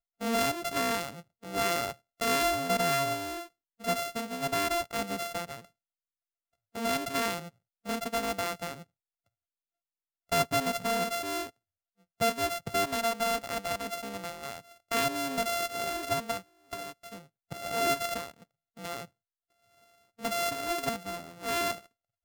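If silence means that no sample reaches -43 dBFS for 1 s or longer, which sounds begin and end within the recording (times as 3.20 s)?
6.75–8.83 s
10.32–19.05 s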